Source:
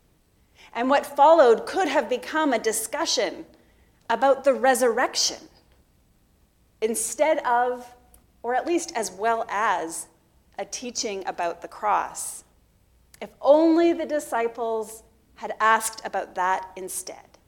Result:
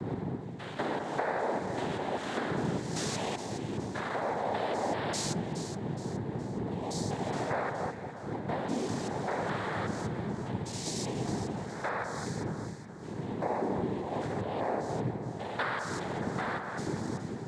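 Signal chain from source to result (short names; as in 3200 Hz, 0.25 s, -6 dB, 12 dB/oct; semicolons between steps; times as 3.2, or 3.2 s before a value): stepped spectrum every 0.2 s; wind noise 250 Hz -27 dBFS; compressor, threshold -30 dBFS, peak gain reduction 19.5 dB; noise vocoder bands 6; echo with dull and thin repeats by turns 0.209 s, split 1800 Hz, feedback 65%, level -6 dB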